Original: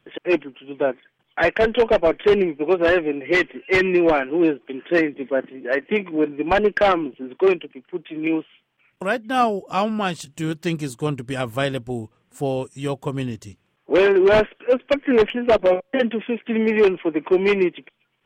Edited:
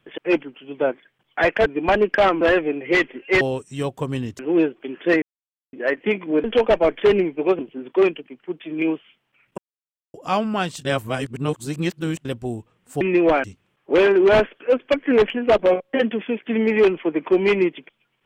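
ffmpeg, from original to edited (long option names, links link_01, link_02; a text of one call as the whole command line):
ffmpeg -i in.wav -filter_complex "[0:a]asplit=15[link_01][link_02][link_03][link_04][link_05][link_06][link_07][link_08][link_09][link_10][link_11][link_12][link_13][link_14][link_15];[link_01]atrim=end=1.662[link_16];[link_02]atrim=start=6.288:end=7.042[link_17];[link_03]atrim=start=2.808:end=3.812[link_18];[link_04]atrim=start=12.458:end=13.442[link_19];[link_05]atrim=start=4.238:end=5.07,asetpts=PTS-STARTPTS,afade=type=out:start_time=0.828:duration=0.004:curve=hsin[link_20];[link_06]atrim=start=5.07:end=5.58,asetpts=PTS-STARTPTS,volume=0[link_21];[link_07]atrim=start=5.58:end=6.292,asetpts=PTS-STARTPTS,afade=type=in:duration=0.004:curve=hsin[link_22];[link_08]atrim=start=1.658:end=2.812[link_23];[link_09]atrim=start=7.038:end=9.03,asetpts=PTS-STARTPTS,afade=type=out:start_time=1.988:duration=0.004:curve=hsin[link_24];[link_10]atrim=start=9.03:end=9.59,asetpts=PTS-STARTPTS,volume=0[link_25];[link_11]atrim=start=9.59:end=10.302,asetpts=PTS-STARTPTS,afade=type=in:duration=0.004:curve=hsin[link_26];[link_12]atrim=start=10.298:end=11.702,asetpts=PTS-STARTPTS,areverse[link_27];[link_13]atrim=start=11.698:end=12.462[link_28];[link_14]atrim=start=3.808:end=4.242[link_29];[link_15]atrim=start=13.438[link_30];[link_16][link_17]acrossfade=duration=0.004:curve1=hsin:curve2=hsin[link_31];[link_31][link_18]acrossfade=duration=0.004:curve1=hsin:curve2=hsin[link_32];[link_32][link_19]acrossfade=duration=0.004:curve1=hsin:curve2=hsin[link_33];[link_20][link_21][link_22]concat=n=3:v=0:a=1[link_34];[link_33][link_34]acrossfade=duration=0.004:curve1=hsin:curve2=hsin[link_35];[link_35][link_23]acrossfade=duration=0.004:curve1=hsin:curve2=hsin[link_36];[link_24][link_25][link_26]concat=n=3:v=0:a=1[link_37];[link_36][link_37]acrossfade=duration=0.004:curve1=hsin:curve2=hsin[link_38];[link_38][link_27]acrossfade=duration=0.004:curve1=hsin:curve2=hsin[link_39];[link_39][link_28]acrossfade=duration=0.004:curve1=hsin:curve2=hsin[link_40];[link_40][link_29]acrossfade=duration=0.004:curve1=hsin:curve2=hsin[link_41];[link_41][link_30]acrossfade=duration=0.004:curve1=hsin:curve2=hsin" out.wav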